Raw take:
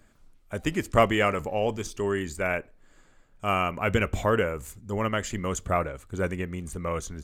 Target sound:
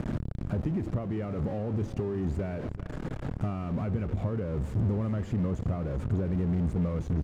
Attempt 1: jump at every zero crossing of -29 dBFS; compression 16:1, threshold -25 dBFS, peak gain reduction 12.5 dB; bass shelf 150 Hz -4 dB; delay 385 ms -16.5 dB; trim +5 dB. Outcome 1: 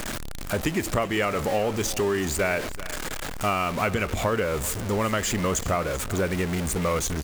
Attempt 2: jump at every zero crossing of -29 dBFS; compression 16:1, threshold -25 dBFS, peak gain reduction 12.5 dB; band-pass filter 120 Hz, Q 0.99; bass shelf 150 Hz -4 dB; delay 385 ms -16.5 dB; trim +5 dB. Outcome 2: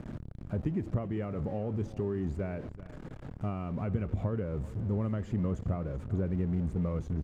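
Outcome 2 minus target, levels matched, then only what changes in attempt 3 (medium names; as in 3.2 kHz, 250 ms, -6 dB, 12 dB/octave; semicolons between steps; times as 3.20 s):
jump at every zero crossing: distortion -8 dB
change: jump at every zero crossing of -17.5 dBFS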